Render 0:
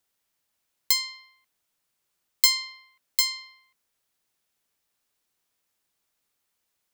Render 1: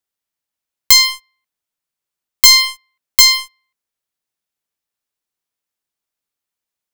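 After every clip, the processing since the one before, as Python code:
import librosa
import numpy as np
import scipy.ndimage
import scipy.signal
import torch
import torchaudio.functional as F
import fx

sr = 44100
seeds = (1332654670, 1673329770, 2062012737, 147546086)

y = fx.leveller(x, sr, passes=5)
y = F.gain(torch.from_numpy(y), 3.0).numpy()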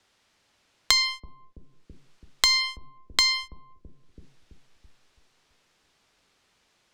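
y = scipy.signal.sosfilt(scipy.signal.butter(2, 5000.0, 'lowpass', fs=sr, output='sos'), x)
y = fx.echo_bbd(y, sr, ms=330, stages=1024, feedback_pct=33, wet_db=-4)
y = fx.band_squash(y, sr, depth_pct=100)
y = F.gain(torch.from_numpy(y), -8.0).numpy()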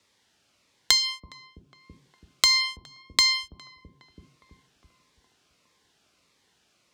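y = scipy.signal.sosfilt(scipy.signal.butter(2, 68.0, 'highpass', fs=sr, output='sos'), x)
y = fx.echo_tape(y, sr, ms=411, feedback_pct=82, wet_db=-20.0, lp_hz=1400.0, drive_db=1.0, wow_cents=27)
y = fx.notch_cascade(y, sr, direction='falling', hz=1.6)
y = F.gain(torch.from_numpy(y), 1.5).numpy()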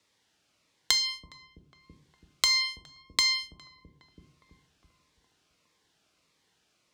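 y = fx.room_shoebox(x, sr, seeds[0], volume_m3=540.0, walls='furnished', distance_m=0.56)
y = F.gain(torch.from_numpy(y), -4.5).numpy()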